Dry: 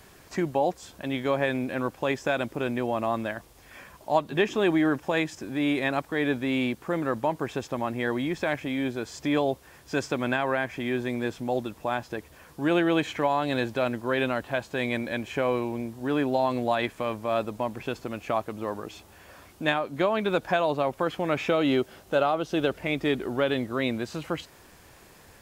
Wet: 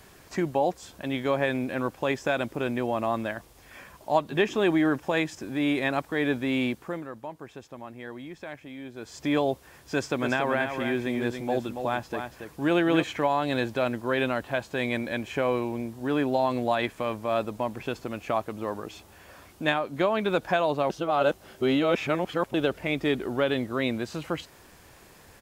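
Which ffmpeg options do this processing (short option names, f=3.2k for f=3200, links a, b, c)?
-filter_complex "[0:a]asplit=3[a][b][c];[a]afade=t=out:st=10.21:d=0.02[d];[b]aecho=1:1:280:0.447,afade=t=in:st=10.21:d=0.02,afade=t=out:st=13.02:d=0.02[e];[c]afade=t=in:st=13.02:d=0.02[f];[d][e][f]amix=inputs=3:normalize=0,asplit=5[g][h][i][j][k];[g]atrim=end=7.08,asetpts=PTS-STARTPTS,afade=t=out:st=6.7:d=0.38:silence=0.251189[l];[h]atrim=start=7.08:end=8.91,asetpts=PTS-STARTPTS,volume=-12dB[m];[i]atrim=start=8.91:end=20.902,asetpts=PTS-STARTPTS,afade=t=in:d=0.38:silence=0.251189[n];[j]atrim=start=20.898:end=22.542,asetpts=PTS-STARTPTS,areverse[o];[k]atrim=start=22.538[p];[l][m][n]concat=n=3:v=0:a=1[q];[q][o]acrossfade=d=0.004:c1=hsin:c2=hsin[r];[r][p]acrossfade=d=0.004:c1=hsin:c2=hsin"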